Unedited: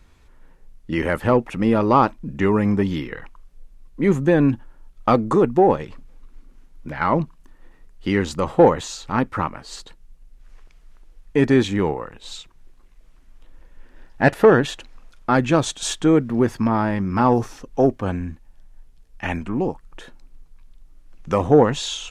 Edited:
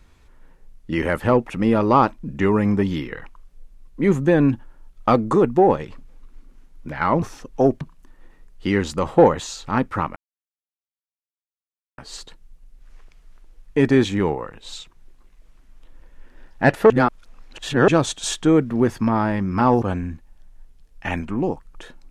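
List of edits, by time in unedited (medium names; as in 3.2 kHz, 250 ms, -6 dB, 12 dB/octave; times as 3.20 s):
9.57 s: insert silence 1.82 s
14.49–15.47 s: reverse
17.41–18.00 s: move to 7.22 s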